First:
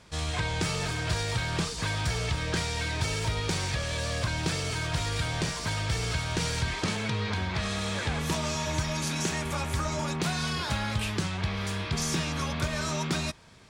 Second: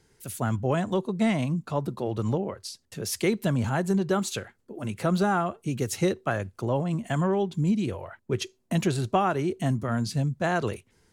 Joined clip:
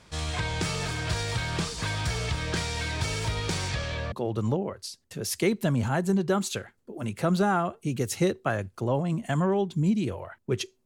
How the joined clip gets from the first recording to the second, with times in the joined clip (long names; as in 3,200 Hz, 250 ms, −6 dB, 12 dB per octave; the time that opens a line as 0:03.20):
first
0:03.68–0:04.12: low-pass filter 9,900 Hz → 1,800 Hz
0:04.12: continue with second from 0:01.93